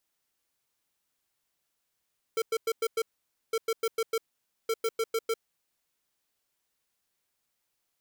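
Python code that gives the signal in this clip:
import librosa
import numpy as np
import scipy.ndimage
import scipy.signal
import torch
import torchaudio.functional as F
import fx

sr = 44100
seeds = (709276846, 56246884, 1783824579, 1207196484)

y = fx.beep_pattern(sr, wave='square', hz=451.0, on_s=0.05, off_s=0.1, beeps=5, pause_s=0.51, groups=3, level_db=-27.5)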